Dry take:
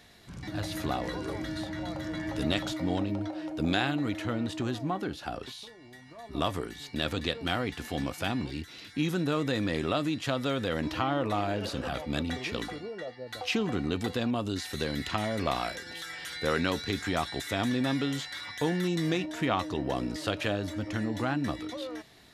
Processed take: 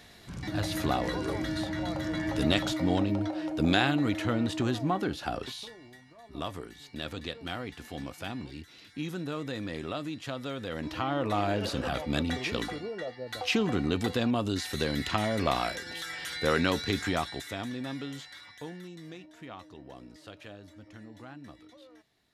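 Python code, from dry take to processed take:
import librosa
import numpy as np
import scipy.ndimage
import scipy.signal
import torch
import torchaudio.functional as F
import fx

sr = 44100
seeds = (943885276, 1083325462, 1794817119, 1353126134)

y = fx.gain(x, sr, db=fx.line((5.73, 3.0), (6.14, -6.5), (10.61, -6.5), (11.47, 2.0), (17.03, 2.0), (17.68, -8.0), (18.31, -8.0), (18.94, -16.5)))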